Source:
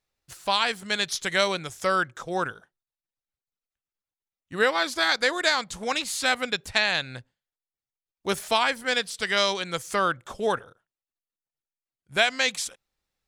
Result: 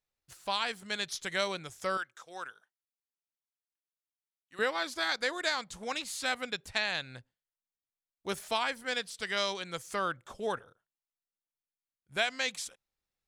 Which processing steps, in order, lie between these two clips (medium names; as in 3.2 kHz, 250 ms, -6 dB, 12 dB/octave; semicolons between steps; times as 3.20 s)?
1.97–4.59 s: high-pass 1.5 kHz 6 dB/octave; trim -8.5 dB